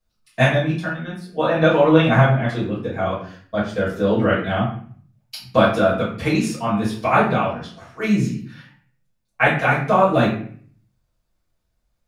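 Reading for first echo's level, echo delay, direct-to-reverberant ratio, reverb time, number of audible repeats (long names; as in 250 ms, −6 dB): no echo audible, no echo audible, −10.5 dB, 0.50 s, no echo audible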